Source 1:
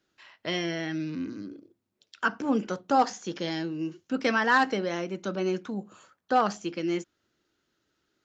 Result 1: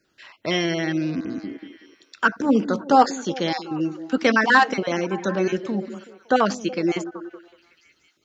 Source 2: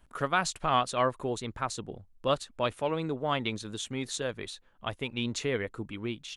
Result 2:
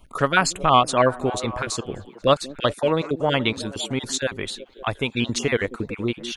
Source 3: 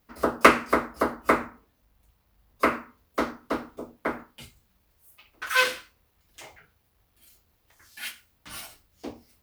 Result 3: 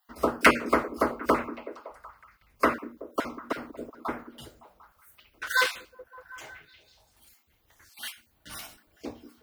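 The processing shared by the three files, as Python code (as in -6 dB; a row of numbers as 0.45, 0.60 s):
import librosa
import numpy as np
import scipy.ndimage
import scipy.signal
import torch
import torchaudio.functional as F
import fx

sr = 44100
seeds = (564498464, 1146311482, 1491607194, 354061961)

y = fx.spec_dropout(x, sr, seeds[0], share_pct=22)
y = fx.echo_stepped(y, sr, ms=187, hz=270.0, octaves=0.7, feedback_pct=70, wet_db=-10.5)
y = fx.end_taper(y, sr, db_per_s=590.0)
y = librosa.util.normalize(y) * 10.0 ** (-3 / 20.0)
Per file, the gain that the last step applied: +7.5, +10.0, -0.5 dB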